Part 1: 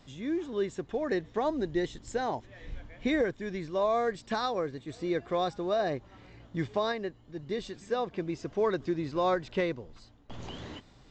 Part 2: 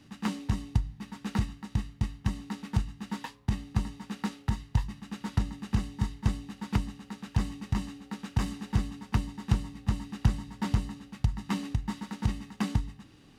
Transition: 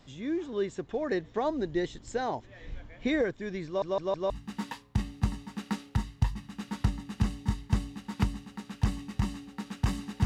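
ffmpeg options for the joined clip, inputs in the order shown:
-filter_complex "[0:a]apad=whole_dur=10.25,atrim=end=10.25,asplit=4[s0][s1][s2][s3];[s0]atrim=end=3.822[s4];[s1]atrim=start=3.658:end=3.822[s5];[s2]atrim=start=3.658:end=3.822[s6];[s3]atrim=start=3.658:end=3.822[s7];[1:a]atrim=start=2.828:end=8.78[s8];[s4][s5]acrossfade=d=0.004:c1=hsin:c2=hsin[s9];[s9][s6]acrossfade=d=0.004:c1=hsin:c2=hsin[s10];[s10][s7]acrossfade=d=0.004:c1=hsin:c2=hsin[s11];[s11][s8]acrossfade=d=0.004:c1=hsin:c2=hsin"

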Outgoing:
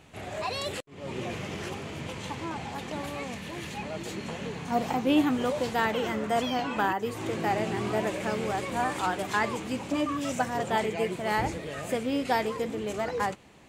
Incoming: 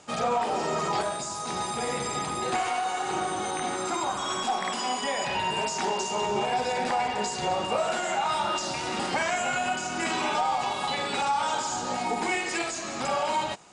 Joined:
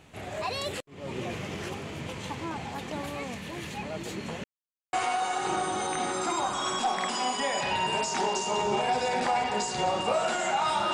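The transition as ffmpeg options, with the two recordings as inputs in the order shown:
-filter_complex "[0:a]apad=whole_dur=10.93,atrim=end=10.93,asplit=2[s0][s1];[s0]atrim=end=4.44,asetpts=PTS-STARTPTS,afade=t=out:st=4.436:d=0.004:c=hsin[s2];[s1]atrim=start=4.44:end=4.93,asetpts=PTS-STARTPTS,volume=0[s3];[1:a]atrim=start=2.57:end=8.57,asetpts=PTS-STARTPTS,afade=t=in:d=0.004:c=hsin[s4];[s2][s3][s4]concat=n=3:v=0:a=1"

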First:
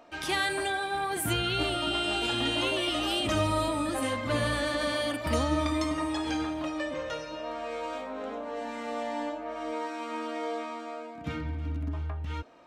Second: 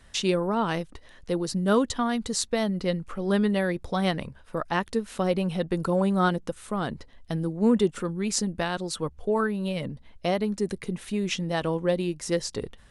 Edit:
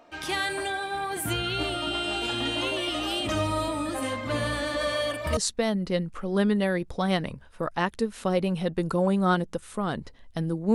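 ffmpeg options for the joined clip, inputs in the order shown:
-filter_complex "[0:a]asettb=1/sr,asplit=3[s0][s1][s2];[s0]atrim=end=4.764[s3];[s1]atrim=start=4.76:end=5.37,asetpts=PTS-STARTPTS,afade=t=in:d=0.004:c=qsin,afade=t=out:st=0.606:d=0.004:c=qsin,aecho=1:1:1.8:0.5,atrim=end_sample=26901[s4];[s2]atrim=start=5.366[s5];[s3][s4]acrossfade=d=0.004:c1=hsin:c2=qsin[s6];[s6][s5]acrossfade=d=0.004:c1=qsin:c2=hsin,apad=whole_dur=10.74,atrim=end=10.74,atrim=end=5.372[s7];[1:a]atrim=start=2.308:end=7.68[s8];[s7][s8]acrossfade=d=0.004:c1=hsin:c2=hsin"

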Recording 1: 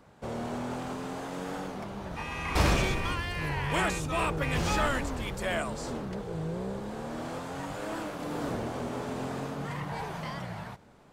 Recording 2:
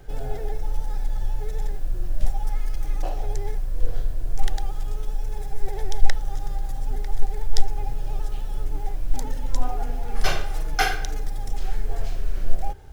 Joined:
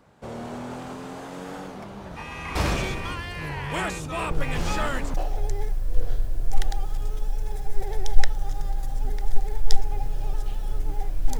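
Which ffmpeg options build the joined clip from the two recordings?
-filter_complex "[1:a]asplit=2[s0][s1];[0:a]apad=whole_dur=11.39,atrim=end=11.39,atrim=end=5.142[s2];[s1]atrim=start=2.998:end=9.25[s3];[s0]atrim=start=2.17:end=3,asetpts=PTS-STARTPTS,volume=0.473,afade=t=in:d=0.004:c=hsin,afade=t=out:st=0.826:d=0.004:c=hsin,adelay=4310[s4];[s2][s3]acrossfade=d=0.004:c1=hsin:c2=hsin[s5];[s5][s4]amix=inputs=2:normalize=0"

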